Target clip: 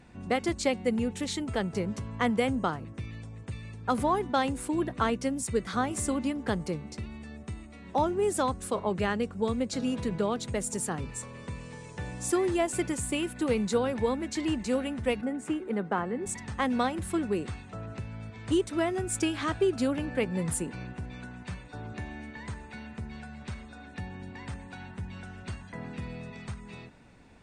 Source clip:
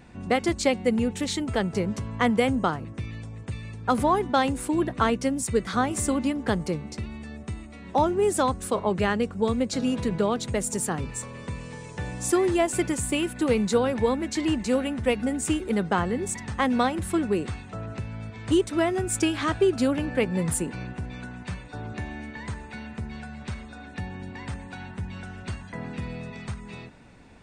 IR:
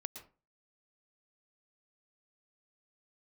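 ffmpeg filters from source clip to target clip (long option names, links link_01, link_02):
-filter_complex "[0:a]asettb=1/sr,asplit=3[link_01][link_02][link_03];[link_01]atrim=end=15.214[link_04];[link_02]atrim=start=15.21:end=16.26,asetpts=PTS-STARTPTS,afade=type=in:duration=0.004:curve=qsin,afade=type=out:start_time=1.046:duration=0.004:curve=qsin,acrossover=split=150 2300:gain=0.126 1 0.224[link_05][link_06][link_07];[link_05][link_06][link_07]amix=inputs=3:normalize=0[link_08];[link_03]atrim=start=16.256[link_09];[link_04][link_08]acrossfade=duration=0.004:curve1=hsin:curve2=qsin[link_10];[link_10][link_09]acrossfade=duration=0.004:curve1=qsin:curve2=hsin[link_11];[1:a]atrim=start_sample=2205,atrim=end_sample=3087,asetrate=24696,aresample=44100[link_12];[link_11][link_12]afir=irnorm=-1:irlink=0,volume=-4dB"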